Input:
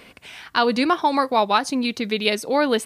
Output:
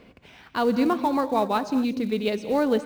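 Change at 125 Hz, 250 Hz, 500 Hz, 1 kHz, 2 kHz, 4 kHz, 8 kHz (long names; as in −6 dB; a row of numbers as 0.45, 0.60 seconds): can't be measured, 0.0 dB, −2.5 dB, −6.0 dB, −9.5 dB, −12.0 dB, −12.0 dB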